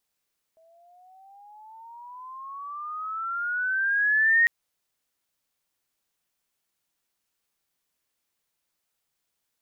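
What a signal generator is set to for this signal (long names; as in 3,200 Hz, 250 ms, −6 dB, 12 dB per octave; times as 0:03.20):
pitch glide with a swell sine, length 3.90 s, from 645 Hz, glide +18.5 semitones, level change +40 dB, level −15.5 dB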